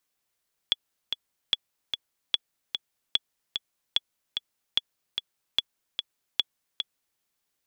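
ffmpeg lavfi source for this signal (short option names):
-f lavfi -i "aevalsrc='pow(10,(-8.5-6.5*gte(mod(t,2*60/148),60/148))/20)*sin(2*PI*3390*mod(t,60/148))*exp(-6.91*mod(t,60/148)/0.03)':d=6.48:s=44100"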